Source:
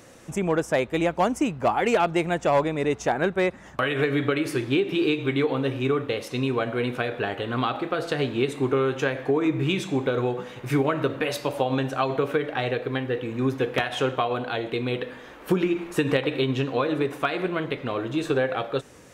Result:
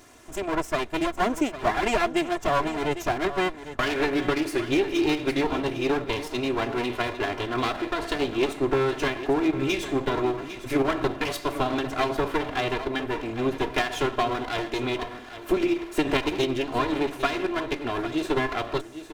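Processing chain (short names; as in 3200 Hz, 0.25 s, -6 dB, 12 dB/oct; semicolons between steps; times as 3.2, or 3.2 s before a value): minimum comb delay 2.9 ms; on a send: echo 0.803 s -12.5 dB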